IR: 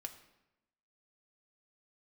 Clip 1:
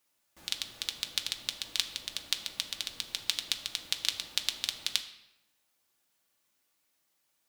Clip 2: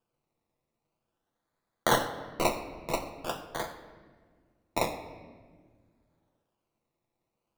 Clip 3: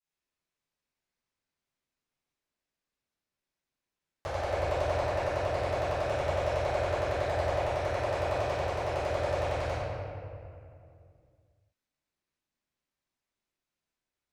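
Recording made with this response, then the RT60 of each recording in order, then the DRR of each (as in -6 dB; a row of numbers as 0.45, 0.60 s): 1; 0.95, 1.6, 2.4 s; 4.5, 4.5, -18.5 dB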